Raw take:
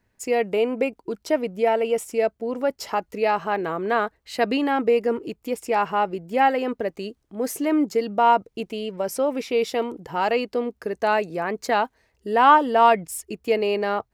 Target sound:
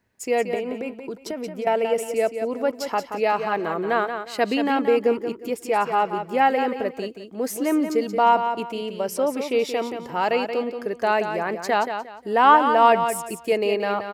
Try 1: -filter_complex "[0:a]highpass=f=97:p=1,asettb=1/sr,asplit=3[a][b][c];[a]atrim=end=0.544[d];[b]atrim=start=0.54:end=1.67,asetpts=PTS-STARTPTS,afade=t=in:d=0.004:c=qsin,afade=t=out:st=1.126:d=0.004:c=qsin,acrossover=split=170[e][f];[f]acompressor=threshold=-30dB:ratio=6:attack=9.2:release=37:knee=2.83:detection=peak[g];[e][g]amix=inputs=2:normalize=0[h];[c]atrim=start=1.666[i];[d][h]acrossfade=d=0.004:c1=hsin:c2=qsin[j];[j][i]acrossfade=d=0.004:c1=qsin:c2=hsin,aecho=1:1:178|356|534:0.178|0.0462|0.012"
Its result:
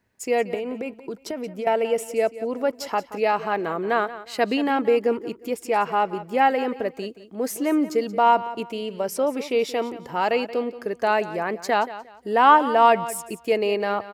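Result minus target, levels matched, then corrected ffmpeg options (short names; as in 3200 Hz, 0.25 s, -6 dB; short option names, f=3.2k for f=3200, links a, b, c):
echo-to-direct -7 dB
-filter_complex "[0:a]highpass=f=97:p=1,asettb=1/sr,asplit=3[a][b][c];[a]atrim=end=0.544[d];[b]atrim=start=0.54:end=1.67,asetpts=PTS-STARTPTS,afade=t=in:d=0.004:c=qsin,afade=t=out:st=1.126:d=0.004:c=qsin,acrossover=split=170[e][f];[f]acompressor=threshold=-30dB:ratio=6:attack=9.2:release=37:knee=2.83:detection=peak[g];[e][g]amix=inputs=2:normalize=0[h];[c]atrim=start=1.666[i];[d][h]acrossfade=d=0.004:c1=hsin:c2=qsin[j];[j][i]acrossfade=d=0.004:c1=qsin:c2=hsin,aecho=1:1:178|356|534:0.398|0.104|0.0269"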